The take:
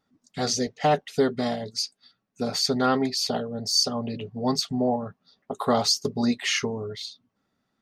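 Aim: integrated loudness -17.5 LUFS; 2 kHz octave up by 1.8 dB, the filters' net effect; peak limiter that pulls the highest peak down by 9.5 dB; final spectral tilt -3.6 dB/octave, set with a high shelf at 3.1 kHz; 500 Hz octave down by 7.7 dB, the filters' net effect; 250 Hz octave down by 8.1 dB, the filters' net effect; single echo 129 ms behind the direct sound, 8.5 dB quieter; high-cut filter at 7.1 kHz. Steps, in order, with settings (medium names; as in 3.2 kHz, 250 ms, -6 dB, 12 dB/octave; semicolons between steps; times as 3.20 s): low-pass 7.1 kHz; peaking EQ 250 Hz -7 dB; peaking EQ 500 Hz -8 dB; peaking EQ 2 kHz +4 dB; treble shelf 3.1 kHz -3.5 dB; peak limiter -21.5 dBFS; delay 129 ms -8.5 dB; trim +14.5 dB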